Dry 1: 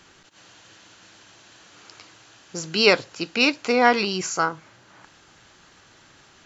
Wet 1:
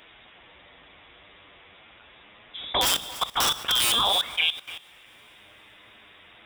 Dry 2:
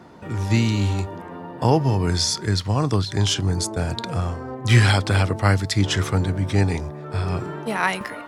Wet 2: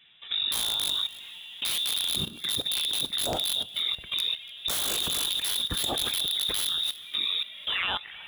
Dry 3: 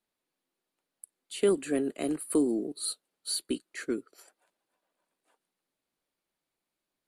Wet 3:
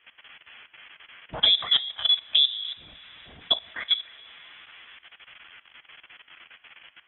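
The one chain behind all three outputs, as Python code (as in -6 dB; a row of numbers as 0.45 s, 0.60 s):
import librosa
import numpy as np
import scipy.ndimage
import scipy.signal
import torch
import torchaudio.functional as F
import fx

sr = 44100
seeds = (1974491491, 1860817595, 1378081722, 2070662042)

y = fx.octave_divider(x, sr, octaves=1, level_db=-6.0)
y = fx.high_shelf(y, sr, hz=2000.0, db=5.0)
y = fx.dmg_noise_band(y, sr, seeds[0], low_hz=310.0, high_hz=2300.0, level_db=-57.0)
y = fx.env_flanger(y, sr, rest_ms=11.3, full_db=-16.5)
y = fx.freq_invert(y, sr, carrier_hz=3700)
y = (np.mod(10.0 ** (11.0 / 20.0) * y + 1.0, 2.0) - 1.0) / 10.0 ** (11.0 / 20.0)
y = scipy.signal.sosfilt(scipy.signal.butter(2, 46.0, 'highpass', fs=sr, output='sos'), y)
y = fx.low_shelf(y, sr, hz=97.0, db=4.5)
y = y + 10.0 ** (-21.0 / 20.0) * np.pad(y, (int(292 * sr / 1000.0), 0))[:len(y)]
y = fx.rev_double_slope(y, sr, seeds[1], early_s=0.45, late_s=4.0, knee_db=-18, drr_db=13.0)
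y = fx.level_steps(y, sr, step_db=15)
y = y * 10.0 ** (-30 / 20.0) / np.sqrt(np.mean(np.square(y)))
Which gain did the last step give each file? +8.0 dB, +1.5 dB, +12.0 dB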